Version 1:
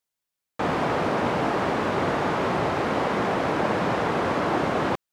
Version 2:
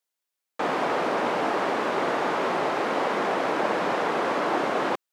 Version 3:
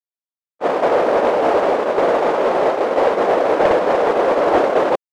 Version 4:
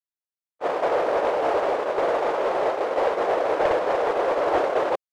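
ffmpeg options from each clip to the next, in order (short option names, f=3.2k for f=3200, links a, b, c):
-af "highpass=300"
-af "agate=range=-44dB:threshold=-24dB:ratio=16:detection=peak,equalizer=f=530:w=1.1:g=12.5,asoftclip=type=tanh:threshold=-14.5dB,volume=7.5dB"
-af "equalizer=f=220:t=o:w=0.87:g=-10,volume=-6dB"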